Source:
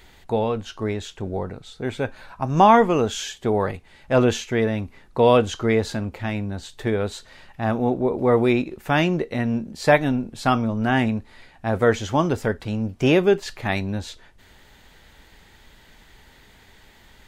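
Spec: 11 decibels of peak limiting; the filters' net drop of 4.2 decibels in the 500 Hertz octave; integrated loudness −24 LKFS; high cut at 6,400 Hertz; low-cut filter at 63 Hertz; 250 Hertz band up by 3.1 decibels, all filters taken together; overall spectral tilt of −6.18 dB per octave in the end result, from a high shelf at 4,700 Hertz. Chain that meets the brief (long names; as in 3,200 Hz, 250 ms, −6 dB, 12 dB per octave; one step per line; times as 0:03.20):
high-pass filter 63 Hz
low-pass filter 6,400 Hz
parametric band 250 Hz +5.5 dB
parametric band 500 Hz −7 dB
high-shelf EQ 4,700 Hz −6 dB
level +2 dB
brickwall limiter −12.5 dBFS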